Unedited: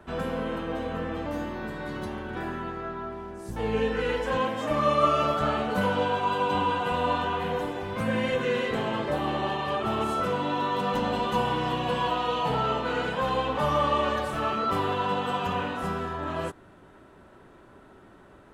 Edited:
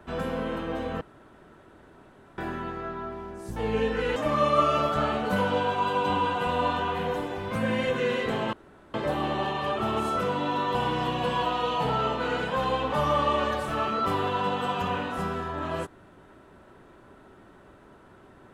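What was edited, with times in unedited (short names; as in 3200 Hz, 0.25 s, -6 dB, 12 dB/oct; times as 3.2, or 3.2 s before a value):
1.01–2.38 room tone
4.16–4.61 cut
8.98 insert room tone 0.41 s
10.79–11.4 cut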